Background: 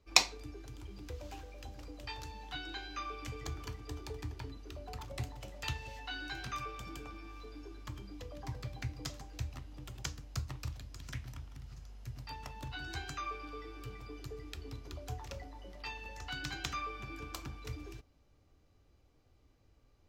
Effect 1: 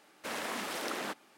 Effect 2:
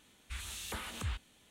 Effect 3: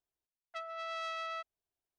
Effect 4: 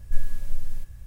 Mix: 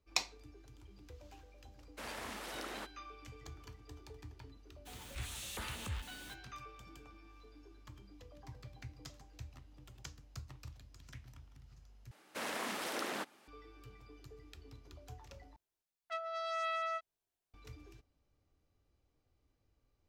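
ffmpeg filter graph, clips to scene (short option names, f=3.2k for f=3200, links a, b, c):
-filter_complex "[1:a]asplit=2[a][b];[0:a]volume=-9.5dB[c];[a]agate=range=-33dB:threshold=-49dB:ratio=3:release=100:detection=peak[d];[2:a]aeval=exprs='val(0)+0.5*0.00668*sgn(val(0))':c=same[e];[3:a]asplit=2[f][g];[g]adelay=20,volume=-4dB[h];[f][h]amix=inputs=2:normalize=0[i];[c]asplit=3[j][k][l];[j]atrim=end=12.114[m];[b]atrim=end=1.37,asetpts=PTS-STARTPTS,volume=-2.5dB[n];[k]atrim=start=13.476:end=15.564[o];[i]atrim=end=1.98,asetpts=PTS-STARTPTS,volume=-0.5dB[p];[l]atrim=start=17.536[q];[d]atrim=end=1.37,asetpts=PTS-STARTPTS,volume=-8dB,afade=t=in:d=0.004:c=hsin,afade=t=out:st=1.366:d=0.004:c=hsin,adelay=1730[r];[e]atrim=end=1.5,asetpts=PTS-STARTPTS,volume=-5dB,afade=t=in:d=0.02,afade=t=out:st=1.48:d=0.02,adelay=213885S[s];[m][n]acrossfade=d=0.004:c1=hsin:c2=hsin[t];[t][o]acrossfade=d=0.004:c1=hsin:c2=hsin[u];[u][p]acrossfade=d=0.004:c1=hsin:c2=hsin[v];[v][q]acrossfade=d=0.004:c1=hsin:c2=hsin[w];[w][r][s]amix=inputs=3:normalize=0"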